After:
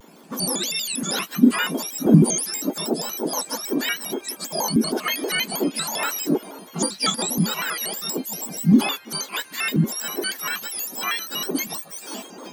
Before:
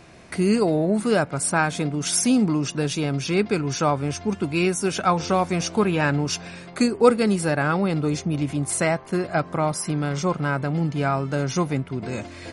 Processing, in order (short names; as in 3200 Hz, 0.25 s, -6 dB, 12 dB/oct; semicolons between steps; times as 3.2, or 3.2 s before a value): spectrum mirrored in octaves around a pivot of 1400 Hz; low shelf 310 Hz +6 dB; shaped vibrato square 6.3 Hz, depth 250 cents